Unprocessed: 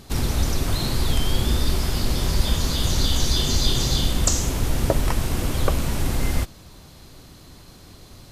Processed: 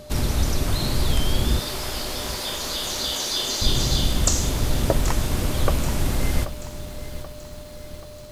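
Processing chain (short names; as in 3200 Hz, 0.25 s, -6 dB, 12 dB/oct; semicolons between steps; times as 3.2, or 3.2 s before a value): 1.59–3.62 HPF 420 Hz 12 dB/oct; whine 600 Hz -41 dBFS; lo-fi delay 0.782 s, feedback 55%, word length 7-bit, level -13 dB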